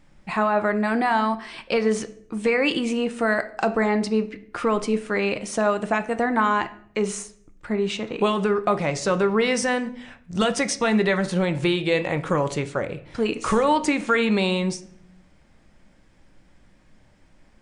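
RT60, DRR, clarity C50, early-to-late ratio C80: 0.60 s, 9.5 dB, 15.5 dB, 18.5 dB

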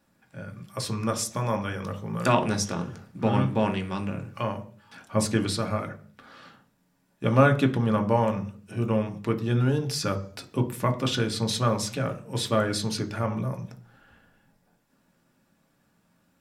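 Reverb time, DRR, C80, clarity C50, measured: 0.45 s, 4.5 dB, 19.5 dB, 15.0 dB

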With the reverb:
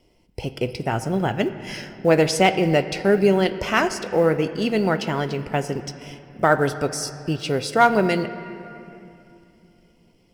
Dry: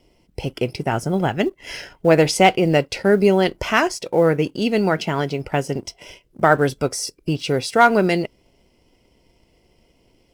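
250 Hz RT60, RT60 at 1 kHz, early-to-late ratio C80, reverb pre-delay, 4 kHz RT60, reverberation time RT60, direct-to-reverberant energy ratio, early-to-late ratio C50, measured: 3.8 s, 2.6 s, 12.5 dB, 8 ms, 2.0 s, 2.7 s, 10.0 dB, 11.5 dB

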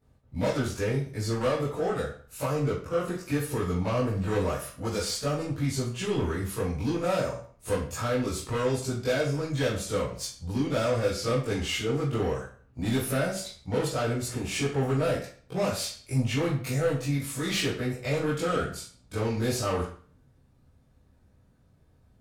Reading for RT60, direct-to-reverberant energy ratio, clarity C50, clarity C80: 0.45 s, -10.5 dB, 4.5 dB, 9.0 dB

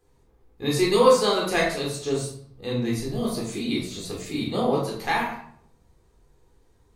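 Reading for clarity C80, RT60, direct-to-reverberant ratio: 7.5 dB, 0.60 s, -3.5 dB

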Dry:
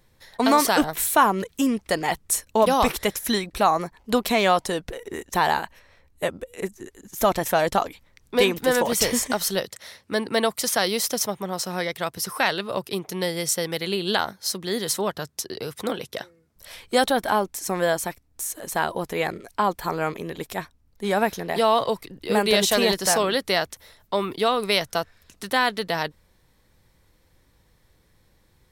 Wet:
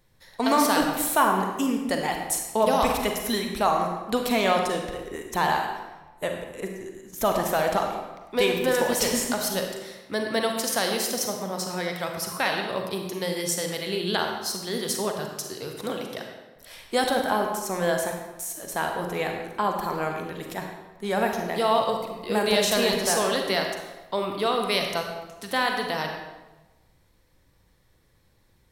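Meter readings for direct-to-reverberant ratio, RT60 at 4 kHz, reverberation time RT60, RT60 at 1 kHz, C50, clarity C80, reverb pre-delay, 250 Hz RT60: 2.5 dB, 0.80 s, 1.1 s, 1.1 s, 3.5 dB, 5.5 dB, 36 ms, 1.2 s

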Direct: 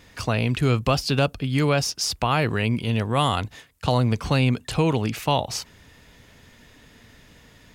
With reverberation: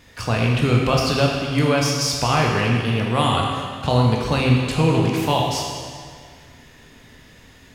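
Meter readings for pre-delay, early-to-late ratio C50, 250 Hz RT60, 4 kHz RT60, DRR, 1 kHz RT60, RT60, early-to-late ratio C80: 15 ms, 1.0 dB, 2.0 s, 1.8 s, -2.0 dB, 2.0 s, 2.0 s, 2.5 dB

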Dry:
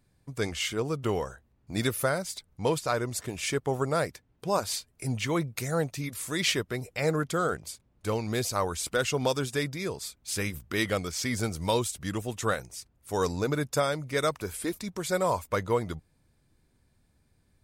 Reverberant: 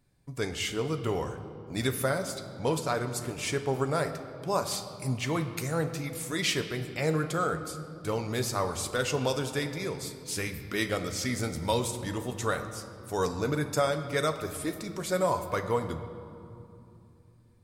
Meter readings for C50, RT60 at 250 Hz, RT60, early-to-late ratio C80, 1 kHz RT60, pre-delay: 9.5 dB, 4.1 s, 2.7 s, 11.0 dB, 2.6 s, 7 ms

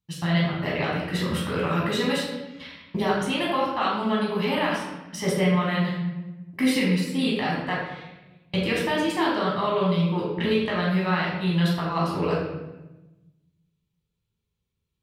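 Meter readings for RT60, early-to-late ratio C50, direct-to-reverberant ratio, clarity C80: 1.1 s, 1.5 dB, -5.0 dB, 3.5 dB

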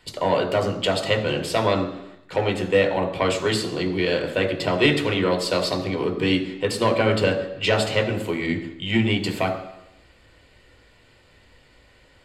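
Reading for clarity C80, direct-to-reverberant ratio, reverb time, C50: 11.5 dB, 3.0 dB, 0.85 s, 10.0 dB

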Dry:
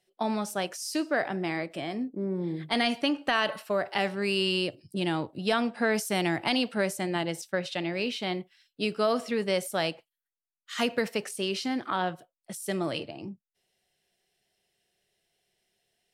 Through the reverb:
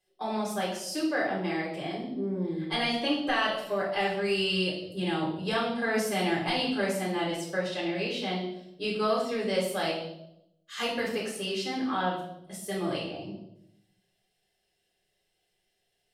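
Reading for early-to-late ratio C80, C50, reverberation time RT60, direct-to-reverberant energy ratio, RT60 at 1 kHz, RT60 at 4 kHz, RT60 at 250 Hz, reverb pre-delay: 7.5 dB, 5.0 dB, 0.85 s, -5.5 dB, 0.70 s, 0.70 s, 0.95 s, 3 ms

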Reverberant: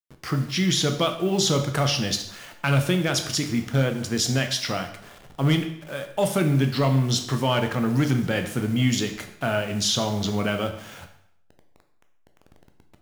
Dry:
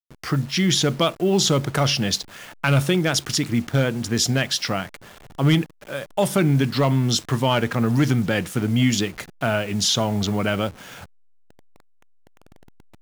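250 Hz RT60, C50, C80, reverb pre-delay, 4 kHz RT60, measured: 0.75 s, 9.5 dB, 12.0 dB, 5 ms, 0.65 s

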